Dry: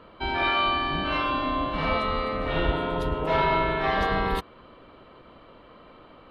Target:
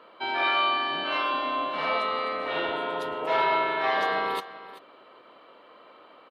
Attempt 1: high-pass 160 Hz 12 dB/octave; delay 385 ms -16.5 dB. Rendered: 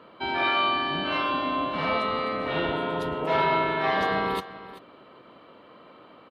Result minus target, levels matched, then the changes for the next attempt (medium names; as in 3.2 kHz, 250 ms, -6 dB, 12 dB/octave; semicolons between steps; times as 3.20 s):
125 Hz band +13.5 dB
change: high-pass 430 Hz 12 dB/octave